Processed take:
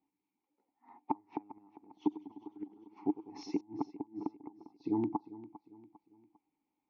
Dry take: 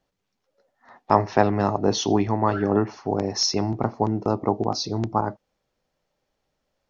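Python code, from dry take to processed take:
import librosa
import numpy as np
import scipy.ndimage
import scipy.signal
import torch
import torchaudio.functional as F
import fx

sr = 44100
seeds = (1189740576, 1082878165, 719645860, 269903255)

y = fx.high_shelf(x, sr, hz=3700.0, db=-12.0)
y = fx.gate_flip(y, sr, shuts_db=-14.0, range_db=-36)
y = fx.vowel_filter(y, sr, vowel='u')
y = fx.echo_feedback(y, sr, ms=400, feedback_pct=40, wet_db=-17)
y = fx.echo_warbled(y, sr, ms=101, feedback_pct=76, rate_hz=2.8, cents=114, wet_db=-16.0, at=(1.56, 3.61))
y = F.gain(torch.from_numpy(y), 5.5).numpy()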